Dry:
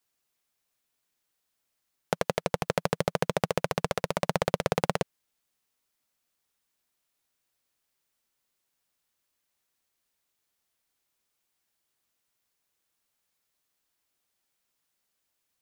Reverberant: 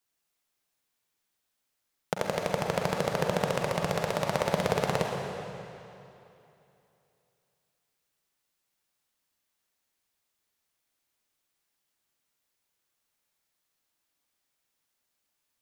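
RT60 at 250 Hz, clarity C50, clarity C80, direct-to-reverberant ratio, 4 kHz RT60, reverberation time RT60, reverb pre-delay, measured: 2.9 s, 1.5 dB, 2.5 dB, 0.0 dB, 2.6 s, 2.9 s, 37 ms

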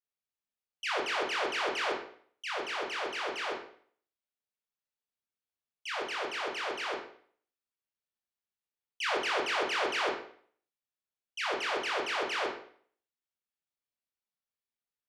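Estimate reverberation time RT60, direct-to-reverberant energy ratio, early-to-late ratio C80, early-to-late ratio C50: 0.55 s, -3.0 dB, 9.0 dB, 5.5 dB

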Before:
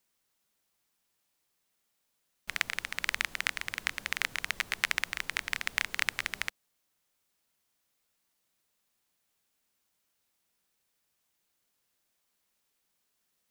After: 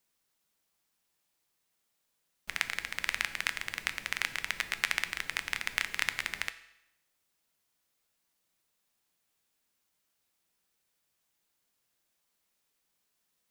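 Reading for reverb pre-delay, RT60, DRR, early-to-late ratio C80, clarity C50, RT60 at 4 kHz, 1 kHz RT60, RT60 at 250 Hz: 6 ms, 0.85 s, 10.5 dB, 16.0 dB, 14.0 dB, 0.80 s, 0.85 s, 0.85 s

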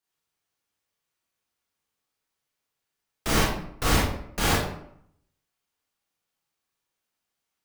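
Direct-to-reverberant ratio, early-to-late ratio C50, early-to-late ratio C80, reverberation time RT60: -6.5 dB, 0.5 dB, 5.5 dB, 0.70 s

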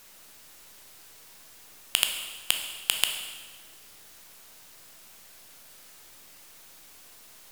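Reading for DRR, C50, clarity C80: 3.5 dB, 5.5 dB, 7.5 dB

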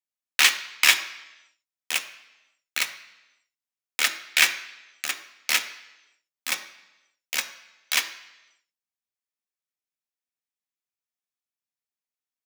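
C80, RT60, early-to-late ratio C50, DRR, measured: 14.5 dB, 1.0 s, 12.5 dB, 5.0 dB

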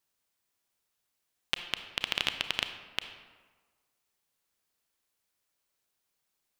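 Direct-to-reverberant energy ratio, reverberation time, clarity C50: 8.0 dB, 1.4 s, 9.0 dB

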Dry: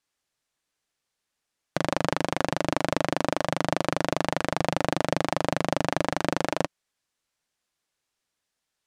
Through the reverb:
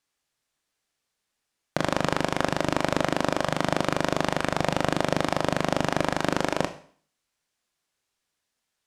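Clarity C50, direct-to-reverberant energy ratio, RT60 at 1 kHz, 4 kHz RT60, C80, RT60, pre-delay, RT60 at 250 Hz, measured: 14.0 dB, 9.0 dB, 0.50 s, 0.50 s, 17.5 dB, 0.50 s, 20 ms, 0.50 s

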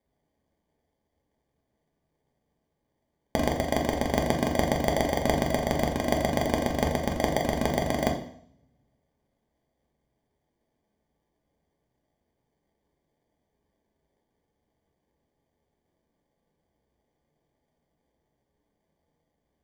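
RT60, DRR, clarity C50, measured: 0.60 s, 1.0 dB, 8.5 dB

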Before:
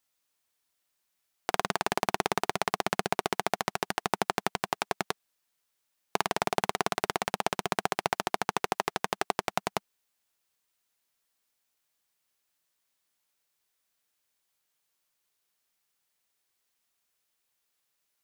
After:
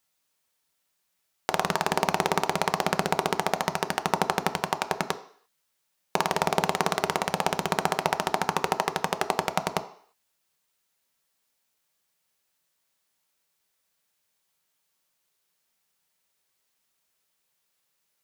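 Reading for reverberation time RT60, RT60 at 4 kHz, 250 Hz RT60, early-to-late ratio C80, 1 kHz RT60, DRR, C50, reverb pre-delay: 0.55 s, 0.60 s, 0.50 s, 18.0 dB, 0.55 s, 8.0 dB, 15.0 dB, 3 ms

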